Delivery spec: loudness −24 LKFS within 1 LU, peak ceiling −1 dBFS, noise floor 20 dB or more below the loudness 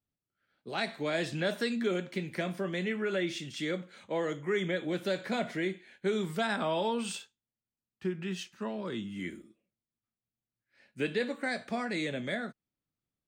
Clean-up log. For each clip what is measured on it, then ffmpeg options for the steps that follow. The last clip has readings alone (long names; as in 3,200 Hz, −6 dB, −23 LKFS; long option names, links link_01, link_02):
integrated loudness −34.0 LKFS; sample peak −19.0 dBFS; target loudness −24.0 LKFS
→ -af "volume=10dB"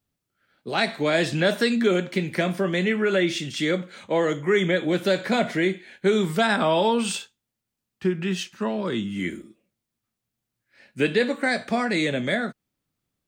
integrated loudness −24.0 LKFS; sample peak −9.0 dBFS; background noise floor −84 dBFS